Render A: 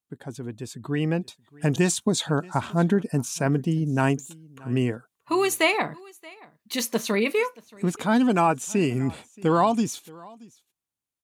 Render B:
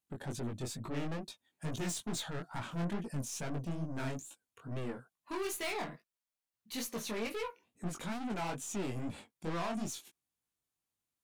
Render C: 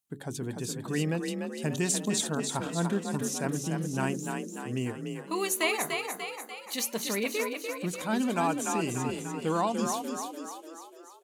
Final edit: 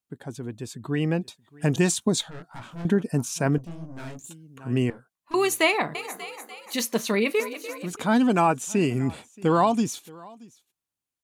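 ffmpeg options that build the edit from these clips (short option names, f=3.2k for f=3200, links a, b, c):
-filter_complex "[1:a]asplit=3[a][b][c];[2:a]asplit=2[d][e];[0:a]asplit=6[f][g][h][i][j][k];[f]atrim=end=2.212[l];[a]atrim=start=2.208:end=2.852[m];[g]atrim=start=2.848:end=3.582[n];[b]atrim=start=3.578:end=4.242[o];[h]atrim=start=4.238:end=4.902[p];[c]atrim=start=4.898:end=5.342[q];[i]atrim=start=5.338:end=5.952[r];[d]atrim=start=5.948:end=6.742[s];[j]atrim=start=6.738:end=7.402[t];[e]atrim=start=7.398:end=7.932[u];[k]atrim=start=7.928[v];[l][m]acrossfade=d=0.004:c1=hsin:c2=hsin[w];[w][n]acrossfade=d=0.004:c1=hsin:c2=hsin[x];[x][o]acrossfade=d=0.004:c1=hsin:c2=hsin[y];[y][p]acrossfade=d=0.004:c1=hsin:c2=hsin[z];[z][q]acrossfade=d=0.004:c1=hsin:c2=hsin[aa];[aa][r]acrossfade=d=0.004:c1=hsin:c2=hsin[ab];[ab][s]acrossfade=d=0.004:c1=hsin:c2=hsin[ac];[ac][t]acrossfade=d=0.004:c1=hsin:c2=hsin[ad];[ad][u]acrossfade=d=0.004:c1=hsin:c2=hsin[ae];[ae][v]acrossfade=d=0.004:c1=hsin:c2=hsin"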